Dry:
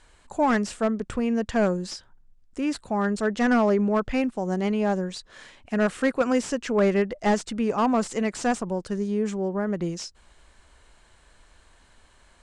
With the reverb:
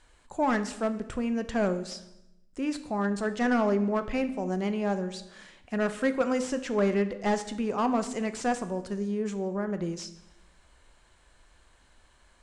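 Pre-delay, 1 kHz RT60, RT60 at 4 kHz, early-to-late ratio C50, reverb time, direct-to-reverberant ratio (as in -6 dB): 3 ms, 0.80 s, 0.75 s, 13.0 dB, 0.90 s, 9.0 dB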